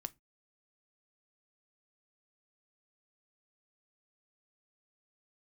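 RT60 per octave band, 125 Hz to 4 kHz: 0.30, 0.30, 0.25, 0.20, 0.20, 0.15 seconds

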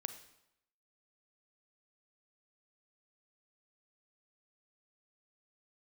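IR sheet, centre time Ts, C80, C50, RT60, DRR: 11 ms, 13.0 dB, 10.5 dB, 0.80 s, 9.0 dB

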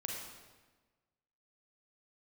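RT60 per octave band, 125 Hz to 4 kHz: 1.5, 1.5, 1.4, 1.3, 1.2, 1.1 seconds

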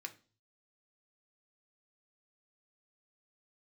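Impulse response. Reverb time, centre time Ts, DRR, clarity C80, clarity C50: 0.40 s, 5 ms, 5.0 dB, 22.5 dB, 16.5 dB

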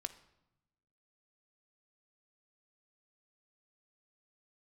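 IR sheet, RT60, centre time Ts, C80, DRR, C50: 0.85 s, 5 ms, 17.5 dB, 7.5 dB, 14.5 dB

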